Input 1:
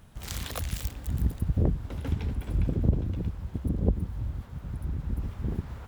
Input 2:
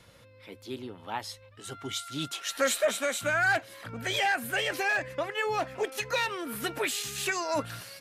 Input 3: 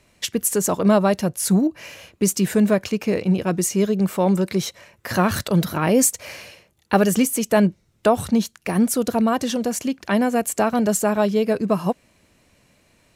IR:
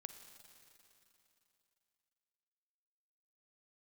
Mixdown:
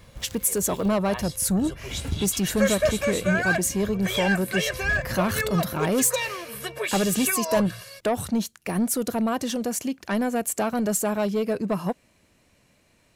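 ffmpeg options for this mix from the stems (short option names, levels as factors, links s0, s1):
-filter_complex "[0:a]volume=1.06[s0];[1:a]aecho=1:1:1.8:0.96,volume=0.841[s1];[2:a]asoftclip=type=tanh:threshold=0.211,adynamicequalizer=threshold=0.0141:dfrequency=7500:dqfactor=0.7:tfrequency=7500:tqfactor=0.7:attack=5:release=100:ratio=0.375:range=2.5:mode=boostabove:tftype=highshelf,volume=0.668,asplit=2[s2][s3];[s3]apad=whole_len=259092[s4];[s0][s4]sidechaincompress=threshold=0.0126:ratio=10:attack=20:release=221[s5];[s5][s1][s2]amix=inputs=3:normalize=0"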